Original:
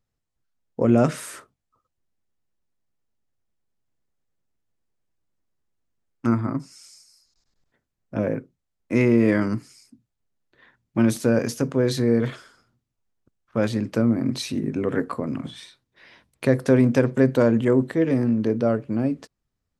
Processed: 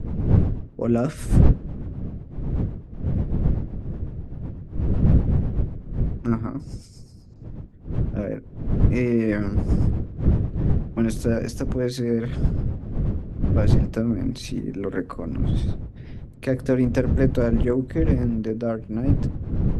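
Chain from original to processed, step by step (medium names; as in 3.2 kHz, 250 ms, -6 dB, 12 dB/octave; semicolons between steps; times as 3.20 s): wind noise 130 Hz -20 dBFS; rotary cabinet horn 8 Hz; trim -2 dB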